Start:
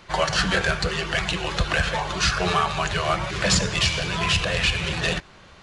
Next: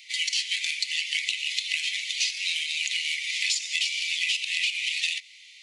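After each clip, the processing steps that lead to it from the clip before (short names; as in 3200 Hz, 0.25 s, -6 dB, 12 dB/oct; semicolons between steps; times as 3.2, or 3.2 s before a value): Chebyshev high-pass 2000 Hz, order 8; compressor 12:1, threshold -29 dBFS, peak gain reduction 11.5 dB; gain +6 dB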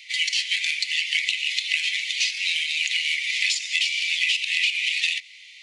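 high shelf 3200 Hz -11 dB; gain +9 dB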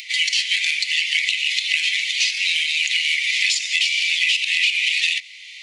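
in parallel at -1 dB: limiter -17 dBFS, peak gain reduction 9.5 dB; on the sum: upward compressor, threshold -33 dBFS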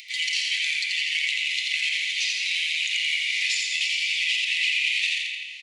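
feedback echo 85 ms, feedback 51%, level -3 dB; on a send at -5.5 dB: reverb RT60 1.3 s, pre-delay 85 ms; on the sum: gain -8 dB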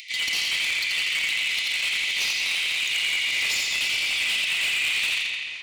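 hard clip -23.5 dBFS, distortion -11 dB; darkening echo 0.217 s, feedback 63%, low-pass 3500 Hz, level -8.5 dB; gain +2 dB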